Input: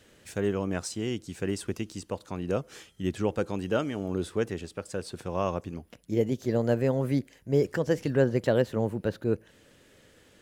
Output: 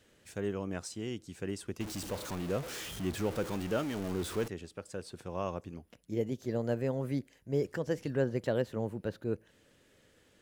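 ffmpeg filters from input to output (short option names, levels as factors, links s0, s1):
-filter_complex "[0:a]asettb=1/sr,asplit=3[s0][s1][s2];[s0]atrim=end=1.804[s3];[s1]atrim=start=1.8:end=4.48,asetpts=PTS-STARTPTS,afade=t=in:d=0.004:c=qsin,afade=t=out:st=2.676:d=0.004:c=qsin,aeval=exprs='val(0)+0.5*0.0316*sgn(val(0))':c=same[s4];[s2]atrim=start=4.476[s5];[s3][s4]acrossfade=d=0.004:c1=hsin:c2=qsin[s6];[s6][s5]acrossfade=d=0.004:c1=qsin:c2=hsin,volume=0.447"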